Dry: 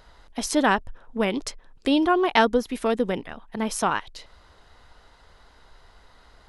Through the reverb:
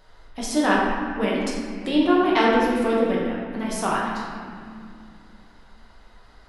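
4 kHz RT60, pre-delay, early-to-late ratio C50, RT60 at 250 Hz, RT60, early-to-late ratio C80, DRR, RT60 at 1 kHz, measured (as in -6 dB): 1.4 s, 5 ms, -1.0 dB, 3.5 s, 2.4 s, 1.0 dB, -5.5 dB, 2.1 s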